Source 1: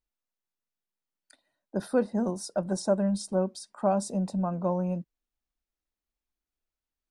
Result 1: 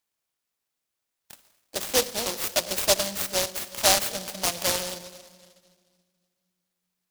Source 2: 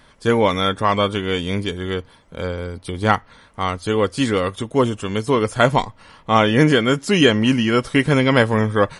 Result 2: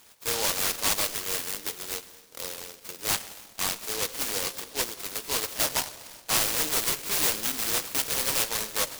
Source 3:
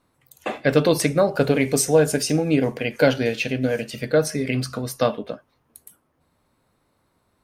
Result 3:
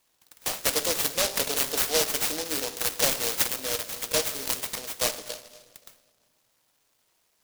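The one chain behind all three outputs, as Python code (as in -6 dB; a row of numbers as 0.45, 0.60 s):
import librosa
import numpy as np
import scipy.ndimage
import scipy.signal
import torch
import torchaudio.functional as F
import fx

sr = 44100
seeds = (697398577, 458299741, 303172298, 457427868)

y = scipy.signal.sosfilt(scipy.signal.butter(2, 1200.0, 'highpass', fs=sr, output='sos'), x)
y = fx.peak_eq(y, sr, hz=11000.0, db=-7.5, octaves=2.3)
y = 10.0 ** (-21.0 / 20.0) * np.tanh(y / 10.0 ** (-21.0 / 20.0))
y = fx.room_shoebox(y, sr, seeds[0], volume_m3=2800.0, walls='mixed', distance_m=0.6)
y = fx.noise_mod_delay(y, sr, seeds[1], noise_hz=4600.0, depth_ms=0.26)
y = y * 10.0 ** (-30 / 20.0) / np.sqrt(np.mean(np.square(y)))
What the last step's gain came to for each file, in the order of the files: +16.5, +1.5, +6.0 dB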